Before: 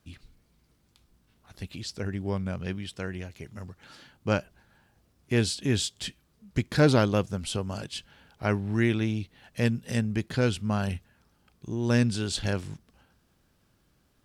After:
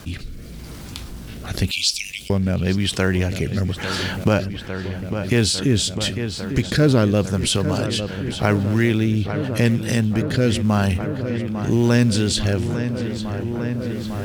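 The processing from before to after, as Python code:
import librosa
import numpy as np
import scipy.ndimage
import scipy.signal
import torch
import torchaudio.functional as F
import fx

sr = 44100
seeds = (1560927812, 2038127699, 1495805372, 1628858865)

p1 = fx.recorder_agc(x, sr, target_db=-16.0, rise_db_per_s=6.9, max_gain_db=30)
p2 = fx.steep_highpass(p1, sr, hz=2300.0, slope=96, at=(1.71, 2.3))
p3 = fx.quant_float(p2, sr, bits=2)
p4 = p2 + F.gain(torch.from_numpy(p3), -6.5).numpy()
p5 = fx.rotary(p4, sr, hz=0.9)
p6 = p5 + fx.echo_filtered(p5, sr, ms=851, feedback_pct=82, hz=3700.0, wet_db=-16.0, dry=0)
p7 = fx.env_flatten(p6, sr, amount_pct=50)
y = F.gain(torch.from_numpy(p7), 1.5).numpy()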